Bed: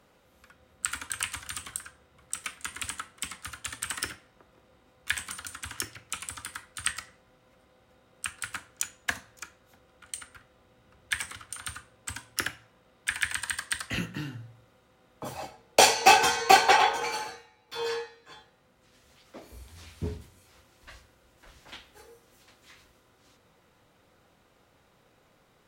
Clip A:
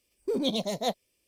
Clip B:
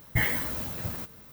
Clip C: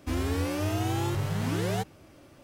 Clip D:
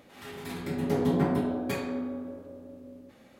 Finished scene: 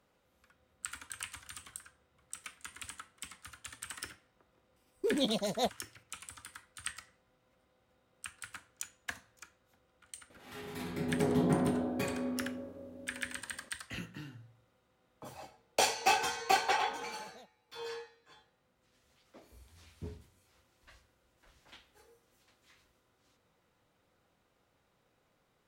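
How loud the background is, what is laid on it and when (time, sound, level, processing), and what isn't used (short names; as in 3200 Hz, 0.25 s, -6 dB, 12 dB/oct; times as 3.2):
bed -10.5 dB
4.76 add A -3 dB
10.3 add D -3.5 dB
16.54 add A -18 dB + compressor, threshold -34 dBFS
not used: B, C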